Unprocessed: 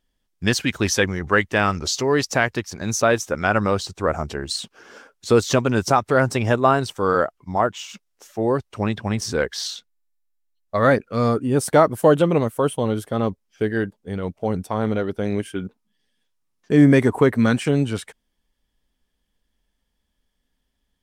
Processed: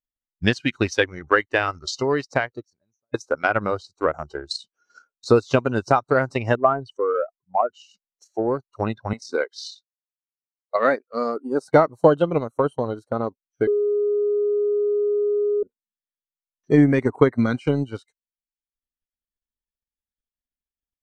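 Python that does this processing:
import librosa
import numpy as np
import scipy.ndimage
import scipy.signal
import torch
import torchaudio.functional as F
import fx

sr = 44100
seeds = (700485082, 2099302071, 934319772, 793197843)

y = fx.studio_fade_out(x, sr, start_s=2.17, length_s=0.97)
y = fx.spec_expand(y, sr, power=2.0, at=(6.55, 7.73))
y = fx.highpass(y, sr, hz=270.0, slope=12, at=(9.13, 11.68))
y = fx.edit(y, sr, fx.bleep(start_s=13.67, length_s=1.96, hz=413.0, db=-13.5), tone=tone)
y = fx.noise_reduce_blind(y, sr, reduce_db=22)
y = scipy.signal.sosfilt(scipy.signal.butter(2, 5100.0, 'lowpass', fs=sr, output='sos'), y)
y = fx.transient(y, sr, attack_db=7, sustain_db=-8)
y = y * librosa.db_to_amplitude(-4.5)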